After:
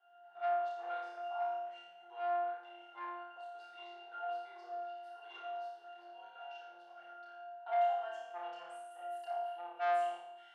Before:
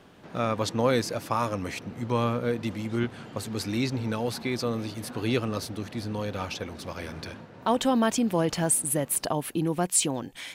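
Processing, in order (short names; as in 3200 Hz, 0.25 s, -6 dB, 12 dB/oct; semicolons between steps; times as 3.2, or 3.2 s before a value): octave resonator F, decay 0.5 s; reverb, pre-delay 30 ms, DRR 3 dB; soft clip -38.5 dBFS, distortion -9 dB; Chebyshev high-pass 660 Hz, order 4; flutter echo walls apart 4.9 m, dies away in 0.66 s; gain +8 dB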